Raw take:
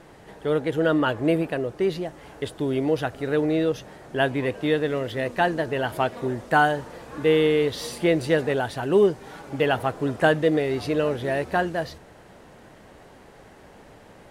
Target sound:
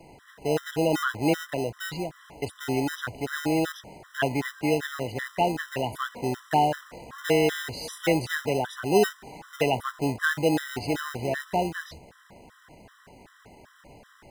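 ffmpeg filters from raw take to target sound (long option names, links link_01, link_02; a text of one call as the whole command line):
ffmpeg -i in.wav -filter_complex "[0:a]acrossover=split=100|450|4400[link_01][link_02][link_03][link_04];[link_02]acrusher=samples=39:mix=1:aa=0.000001[link_05];[link_01][link_05][link_03][link_04]amix=inputs=4:normalize=0,afftfilt=real='re*gt(sin(2*PI*2.6*pts/sr)*(1-2*mod(floor(b*sr/1024/1000),2)),0)':imag='im*gt(sin(2*PI*2.6*pts/sr)*(1-2*mod(floor(b*sr/1024/1000),2)),0)':win_size=1024:overlap=0.75" out.wav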